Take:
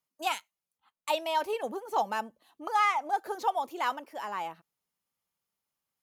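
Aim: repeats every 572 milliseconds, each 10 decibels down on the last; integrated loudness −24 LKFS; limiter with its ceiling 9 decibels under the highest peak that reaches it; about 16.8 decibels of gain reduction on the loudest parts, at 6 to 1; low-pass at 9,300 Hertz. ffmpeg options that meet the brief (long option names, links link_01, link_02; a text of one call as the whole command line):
ffmpeg -i in.wav -af "lowpass=9300,acompressor=threshold=-41dB:ratio=6,alimiter=level_in=11.5dB:limit=-24dB:level=0:latency=1,volume=-11.5dB,aecho=1:1:572|1144|1716|2288:0.316|0.101|0.0324|0.0104,volume=22.5dB" out.wav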